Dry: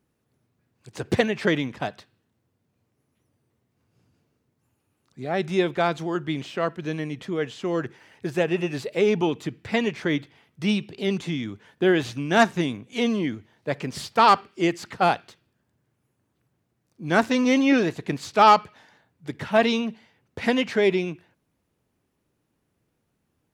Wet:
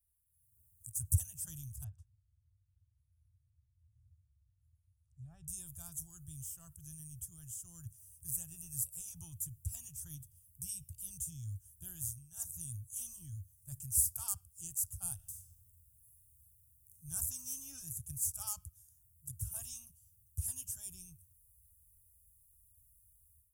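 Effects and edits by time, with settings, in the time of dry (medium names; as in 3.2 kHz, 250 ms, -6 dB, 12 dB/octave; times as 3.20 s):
1.84–5.48 s: low-pass 2.2 kHz
11.87–12.75 s: dip -14.5 dB, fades 0.44 s
15.15–17.03 s: reverb throw, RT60 1.5 s, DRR -1.5 dB
whole clip: amplifier tone stack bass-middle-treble 5-5-5; level rider gain up to 15 dB; inverse Chebyshev band-stop 200–4400 Hz, stop band 50 dB; trim +11.5 dB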